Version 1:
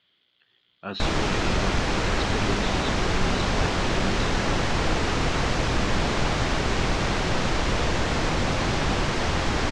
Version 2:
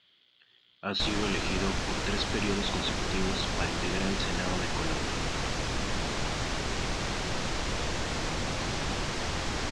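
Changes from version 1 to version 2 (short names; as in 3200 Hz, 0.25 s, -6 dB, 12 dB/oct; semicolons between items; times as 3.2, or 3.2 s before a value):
background -8.5 dB; master: add high shelf 4100 Hz +8.5 dB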